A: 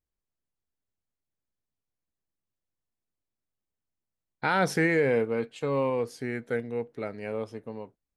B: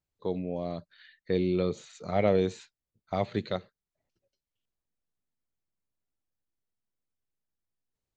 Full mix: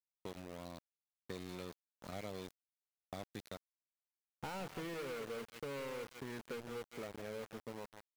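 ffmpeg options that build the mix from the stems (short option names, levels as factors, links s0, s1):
-filter_complex "[0:a]lowpass=1100,asoftclip=type=tanh:threshold=0.0355,volume=1.26,asplit=2[s0][s1];[s1]volume=0.282[s2];[1:a]bass=f=250:g=4,treble=f=4000:g=11,volume=0.355[s3];[s2]aecho=0:1:162:1[s4];[s0][s3][s4]amix=inputs=3:normalize=0,acrossover=split=860|2400[s5][s6][s7];[s5]acompressor=threshold=0.00501:ratio=4[s8];[s6]acompressor=threshold=0.00224:ratio=4[s9];[s7]acompressor=threshold=0.00126:ratio=4[s10];[s8][s9][s10]amix=inputs=3:normalize=0,aeval=exprs='val(0)*gte(abs(val(0)),0.00531)':c=same"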